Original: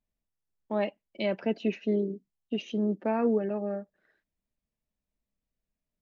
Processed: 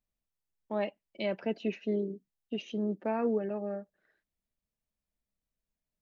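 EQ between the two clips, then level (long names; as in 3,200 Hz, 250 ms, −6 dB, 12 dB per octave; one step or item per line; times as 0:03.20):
parametric band 250 Hz −2 dB
−3.0 dB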